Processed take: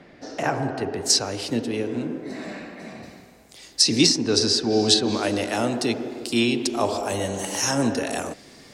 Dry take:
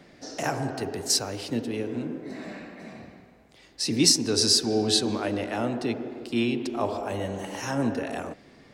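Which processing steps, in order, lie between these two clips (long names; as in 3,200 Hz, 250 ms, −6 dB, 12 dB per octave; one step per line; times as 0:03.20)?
bass and treble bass −2 dB, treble −10 dB, from 0:01.04 treble +3 dB, from 0:03.02 treble +14 dB
treble cut that deepens with the level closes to 2,200 Hz, closed at −11.5 dBFS
level +4.5 dB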